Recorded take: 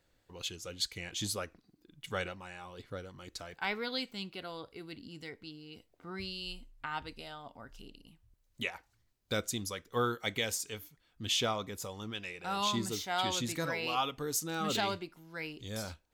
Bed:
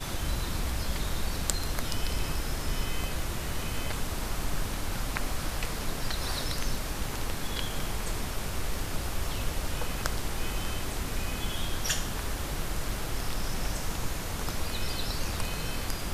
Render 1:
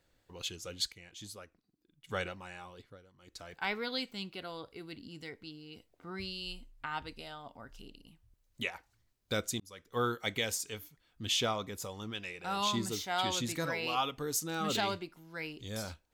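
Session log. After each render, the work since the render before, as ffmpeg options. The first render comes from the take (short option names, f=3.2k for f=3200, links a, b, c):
-filter_complex "[0:a]asplit=6[a][b][c][d][e][f];[a]atrim=end=0.922[g];[b]atrim=start=0.918:end=2.092,asetpts=PTS-STARTPTS,volume=-11.5dB[h];[c]atrim=start=2.088:end=2.98,asetpts=PTS-STARTPTS,afade=t=out:st=0.502:d=0.39:silence=0.188365[i];[d]atrim=start=2.98:end=3.18,asetpts=PTS-STARTPTS,volume=-14.5dB[j];[e]atrim=start=3.18:end=9.6,asetpts=PTS-STARTPTS,afade=t=in:d=0.39:silence=0.188365,afade=t=out:st=6.416:d=0.004:c=hsin[k];[f]atrim=start=9.6,asetpts=PTS-STARTPTS,afade=t=in:d=0.46[l];[g][h]acrossfade=d=0.004:c1=hsin:c2=hsin[m];[i][j][k][l]concat=n=4:v=0:a=1[n];[m][n]acrossfade=d=0.004:c1=hsin:c2=hsin"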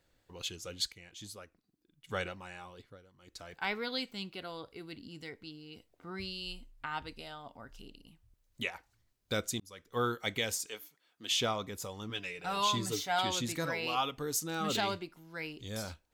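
-filter_complex "[0:a]asettb=1/sr,asplit=3[a][b][c];[a]atrim=end=10.664[d];[b]atrim=start=10.66:end=11.31,asetpts=PTS-STARTPTS,afade=t=in:d=0.004:c=qsin,afade=t=out:st=0.646:d=0.004:c=qsin,highpass=360[e];[c]atrim=start=11.306[f];[d][e]acrossfade=d=0.004:c1=hsin:c2=qsin[g];[g][f]acrossfade=d=0.004:c1=qsin:c2=hsin,asettb=1/sr,asplit=3[h][i][j];[h]atrim=end=12.094[k];[i]atrim=start=12.09:end=13.19,asetpts=PTS-STARTPTS,afade=t=in:d=0.004:c=qsin,afade=t=out:st=1.096:d=0.004:c=qsin,aecho=1:1:6.9:0.65,atrim=end_sample=48510[l];[j]atrim=start=13.186[m];[k][l]acrossfade=d=0.004:c1=hsin:c2=qsin[n];[n][m]acrossfade=d=0.004:c1=qsin:c2=hsin"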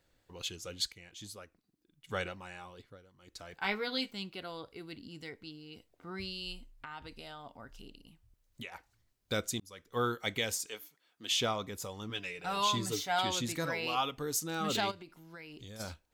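-filter_complex "[0:a]asettb=1/sr,asplit=3[a][b][c];[a]atrim=end=3.624[d];[b]atrim=start=3.62:end=4.11,asetpts=PTS-STARTPTS,afade=t=in:d=0.004:c=qsin,afade=t=out:st=0.486:d=0.004:c=qsin,asplit=2[e][f];[f]adelay=15,volume=-5dB[g];[e][g]amix=inputs=2:normalize=0,atrim=end_sample=21609[h];[c]atrim=start=4.106[i];[d][h]acrossfade=d=0.004:c1=hsin:c2=qsin[j];[j][i]acrossfade=d=0.004:c1=qsin:c2=hsin,asettb=1/sr,asplit=3[k][l][m];[k]atrim=end=6.714[n];[l]atrim=start=6.71:end=8.72,asetpts=PTS-STARTPTS,afade=t=in:d=0.004:c=qsin,afade=t=out:st=2.006:d=0.004:c=qsin,acompressor=threshold=-42dB:ratio=3:attack=3.2:release=140:knee=1:detection=peak[o];[m]atrim=start=8.716[p];[n][o]acrossfade=d=0.004:c1=hsin:c2=qsin[q];[q][p]acrossfade=d=0.004:c1=qsin:c2=hsin,asplit=3[r][s][t];[r]afade=t=out:st=14.9:d=0.02[u];[s]acompressor=threshold=-44dB:ratio=12:attack=3.2:release=140:knee=1:detection=peak,afade=t=in:st=14.9:d=0.02,afade=t=out:st=15.79:d=0.02[v];[t]afade=t=in:st=15.79:d=0.02[w];[u][v][w]amix=inputs=3:normalize=0"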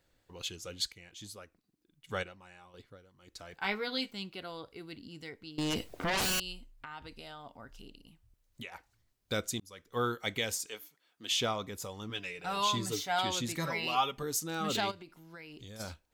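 -filter_complex "[0:a]asettb=1/sr,asplit=3[a][b][c];[a]atrim=end=5.584[d];[b]atrim=start=5.58:end=6.4,asetpts=PTS-STARTPTS,afade=t=in:d=0.004:c=qsin,afade=t=out:st=0.816:d=0.004:c=qsin,aeval=exprs='0.0422*sin(PI/2*7.94*val(0)/0.0422)':c=same[e];[c]atrim=start=6.396[f];[d][e]acrossfade=d=0.004:c1=hsin:c2=qsin[g];[g][f]acrossfade=d=0.004:c1=qsin:c2=hsin,asettb=1/sr,asplit=3[h][i][j];[h]atrim=end=13.574[k];[i]atrim=start=13.57:end=14.23,asetpts=PTS-STARTPTS,afade=t=in:d=0.004:c=qsin,afade=t=out:st=0.656:d=0.004:c=qsin,aecho=1:1:5.1:0.65,atrim=end_sample=29106[l];[j]atrim=start=14.226[m];[k][l]acrossfade=d=0.004:c1=hsin:c2=qsin[n];[n][m]acrossfade=d=0.004:c1=qsin:c2=hsin,asplit=3[o][p][q];[o]atrim=end=2.232[r];[p]atrim=start=2.228:end=2.742,asetpts=PTS-STARTPTS,volume=-8dB[s];[q]atrim=start=2.738[t];[r][s]acrossfade=d=0.004:c1=hsin:c2=hsin[u];[u][t]acrossfade=d=0.004:c1=hsin:c2=hsin"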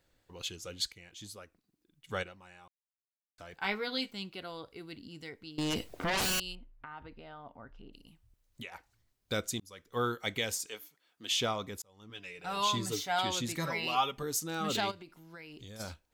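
-filter_complex "[0:a]asettb=1/sr,asplit=3[a][b][c];[a]atrim=end=6.554[d];[b]atrim=start=6.55:end=7.93,asetpts=PTS-STARTPTS,afade=t=in:d=0.004:c=qsin,afade=t=out:st=1.376:d=0.004:c=qsin,lowpass=1.9k[e];[c]atrim=start=7.926[f];[d][e]acrossfade=d=0.004:c1=hsin:c2=qsin[g];[g][f]acrossfade=d=0.004:c1=qsin:c2=hsin,asplit=4[h][i][j][k];[h]atrim=end=2.68,asetpts=PTS-STARTPTS,afade=t=out:st=2.676:d=0.004:c=hsin[l];[i]atrim=start=2.68:end=3.38,asetpts=PTS-STARTPTS,volume=0[m];[j]atrim=start=3.38:end=11.82,asetpts=PTS-STARTPTS,afade=t=in:d=0.004:c=hsin,afade=t=out:st=8.436:d=0.004:c=hsin[n];[k]atrim=start=11.82,asetpts=PTS-STARTPTS,afade=t=in:d=0.82[o];[l][m][n][o]concat=n=4:v=0:a=1"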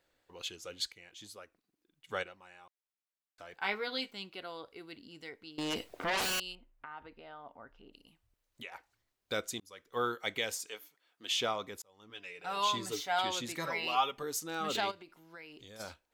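-af "bass=f=250:g=-11,treble=f=4k:g=-4"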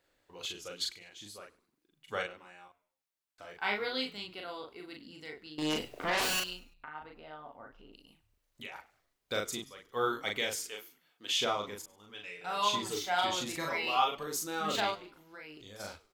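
-filter_complex "[0:a]asplit=2[a][b];[b]adelay=39,volume=-2.5dB[c];[a][c]amix=inputs=2:normalize=0,asplit=4[d][e][f][g];[e]adelay=100,afreqshift=-89,volume=-21.5dB[h];[f]adelay=200,afreqshift=-178,volume=-30.4dB[i];[g]adelay=300,afreqshift=-267,volume=-39.2dB[j];[d][h][i][j]amix=inputs=4:normalize=0"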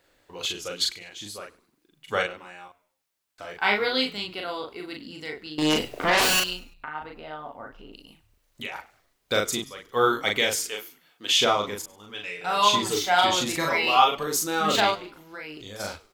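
-af "volume=10dB"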